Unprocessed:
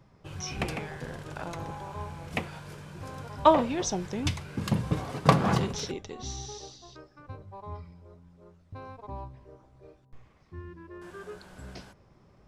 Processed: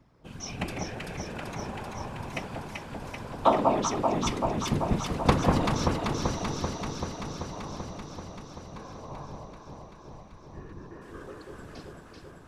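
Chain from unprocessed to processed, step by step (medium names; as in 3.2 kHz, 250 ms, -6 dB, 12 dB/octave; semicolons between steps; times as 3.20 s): whisper effect; echo whose repeats swap between lows and highs 193 ms, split 1.1 kHz, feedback 86%, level -2 dB; trim -2.5 dB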